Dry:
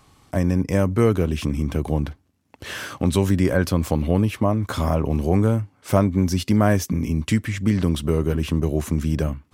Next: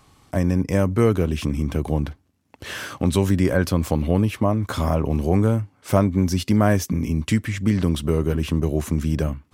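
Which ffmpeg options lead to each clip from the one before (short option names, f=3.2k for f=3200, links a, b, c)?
-af anull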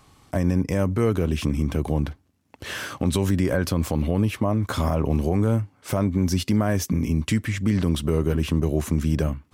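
-af "alimiter=limit=-11dB:level=0:latency=1:release=57"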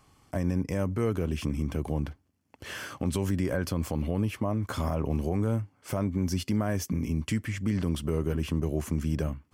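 -af "bandreject=f=3.8k:w=8.2,volume=-6.5dB"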